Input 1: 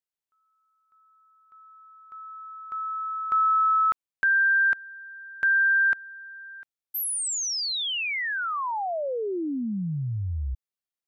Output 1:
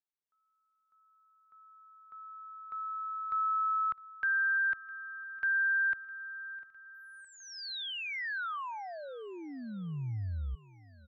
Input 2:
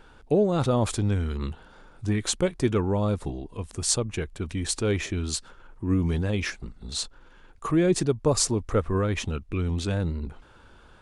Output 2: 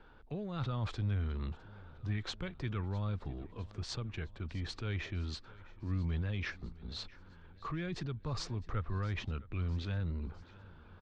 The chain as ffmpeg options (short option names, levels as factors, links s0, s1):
-filter_complex "[0:a]acrossover=split=150|1200|2200[s0][s1][s2][s3];[s1]acompressor=threshold=0.0141:ratio=6:attack=0.19:release=25:knee=1:detection=rms[s4];[s3]lowpass=f=4100:w=0.5412,lowpass=f=4100:w=1.3066[s5];[s0][s4][s2][s5]amix=inputs=4:normalize=0,aecho=1:1:657|1314|1971|2628|3285:0.0891|0.0526|0.031|0.0183|0.0108,volume=0.473"